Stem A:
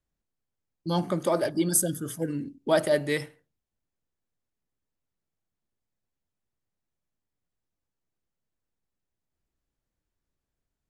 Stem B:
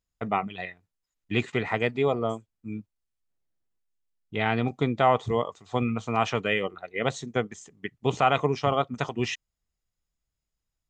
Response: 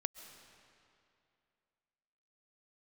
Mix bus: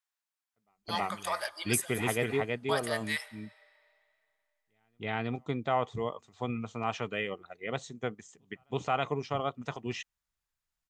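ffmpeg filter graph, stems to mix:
-filter_complex "[0:a]highpass=f=890:w=0.5412,highpass=f=890:w=1.3066,alimiter=limit=-20.5dB:level=0:latency=1:release=334,volume=-2dB,asplit=3[a][b][c];[b]volume=-7.5dB[d];[1:a]adelay=350,volume=-5dB,asplit=2[e][f];[f]volume=-3dB[g];[c]apad=whole_len=495801[h];[e][h]sidechaingate=range=-43dB:threshold=-58dB:ratio=16:detection=peak[i];[2:a]atrim=start_sample=2205[j];[d][j]afir=irnorm=-1:irlink=0[k];[g]aecho=0:1:324:1[l];[a][i][k][l]amix=inputs=4:normalize=0"

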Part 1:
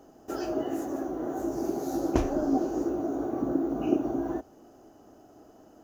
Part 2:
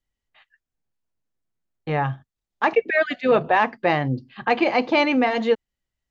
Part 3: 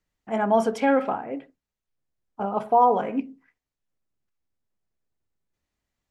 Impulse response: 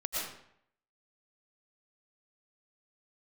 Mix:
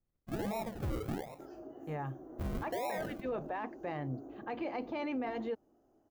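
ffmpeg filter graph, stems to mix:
-filter_complex "[0:a]acompressor=threshold=-28dB:ratio=6,adelay=1100,volume=-15.5dB[a];[1:a]volume=-14dB[b];[2:a]firequalizer=gain_entry='entry(180,0);entry(270,-30);entry(760,-2)':delay=0.05:min_phase=1,acrusher=samples=40:mix=1:aa=0.000001:lfo=1:lforange=24:lforate=1.3,volume=-1.5dB[c];[a][b][c]amix=inputs=3:normalize=0,equalizer=f=5.1k:w=0.31:g=-9,alimiter=level_in=5.5dB:limit=-24dB:level=0:latency=1:release=11,volume=-5.5dB"

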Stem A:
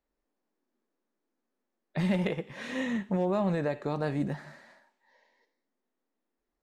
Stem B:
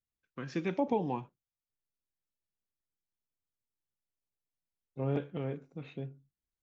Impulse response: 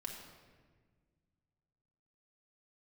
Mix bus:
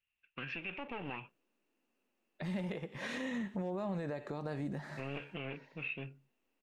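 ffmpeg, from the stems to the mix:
-filter_complex "[0:a]acompressor=threshold=-35dB:ratio=2.5,adelay=450,volume=2dB[a];[1:a]aeval=exprs='clip(val(0),-1,0.00891)':c=same,lowpass=f=2.7k:t=q:w=13,equalizer=f=1.8k:w=0.62:g=7,volume=-4dB[b];[a][b]amix=inputs=2:normalize=0,alimiter=level_in=6dB:limit=-24dB:level=0:latency=1:release=148,volume=-6dB"

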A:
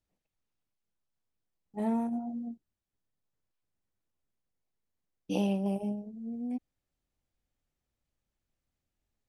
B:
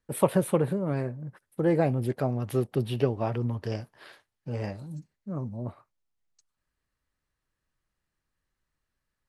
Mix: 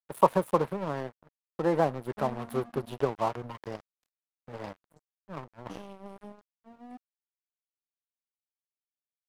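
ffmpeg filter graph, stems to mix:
-filter_complex "[0:a]acompressor=threshold=-32dB:ratio=16,adelay=400,volume=-1dB[a];[1:a]equalizer=f=100:t=o:w=0.67:g=-9,equalizer=f=250:t=o:w=0.67:g=-5,equalizer=f=1k:t=o:w=0.67:g=12,equalizer=f=2.5k:t=o:w=0.67:g=-7,equalizer=f=6.3k:t=o:w=0.67:g=-10,acrossover=split=150|3000[b][c][d];[b]acompressor=threshold=-40dB:ratio=6[e];[e][c][d]amix=inputs=3:normalize=0,volume=-0.5dB[f];[a][f]amix=inputs=2:normalize=0,aeval=exprs='sgn(val(0))*max(abs(val(0))-0.0133,0)':c=same"

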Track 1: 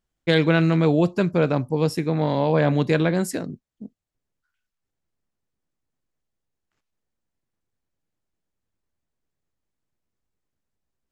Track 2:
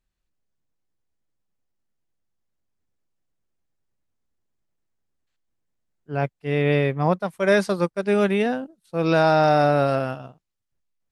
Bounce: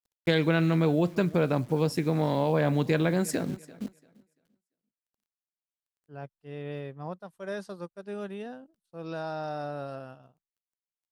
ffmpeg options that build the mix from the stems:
-filter_complex "[0:a]acrusher=bits=9:dc=4:mix=0:aa=0.000001,volume=2.5dB,asplit=2[a][b];[b]volume=-24dB[c];[1:a]agate=range=-33dB:threshold=-52dB:ratio=3:detection=peak,equalizer=f=2.2k:t=o:w=0.29:g=-10.5,volume=-17dB[d];[c]aecho=0:1:342|684|1026|1368:1|0.22|0.0484|0.0106[e];[a][d][e]amix=inputs=3:normalize=0,acompressor=threshold=-27dB:ratio=2"

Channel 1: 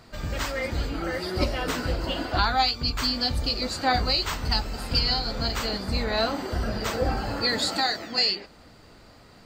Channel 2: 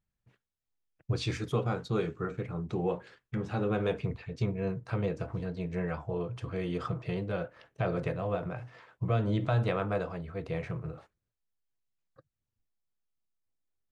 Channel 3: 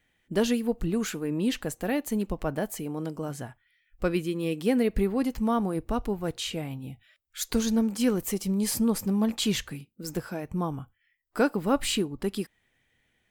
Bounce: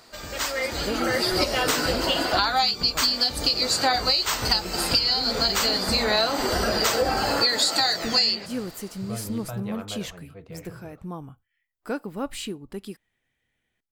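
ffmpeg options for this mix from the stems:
-filter_complex "[0:a]dynaudnorm=f=140:g=13:m=11.5dB,bass=f=250:g=-13,treble=f=4k:g=7,volume=0.5dB[a];[1:a]volume=-7dB[b];[2:a]adelay=500,volume=-6dB[c];[a][b][c]amix=inputs=3:normalize=0,acompressor=threshold=-19dB:ratio=6"

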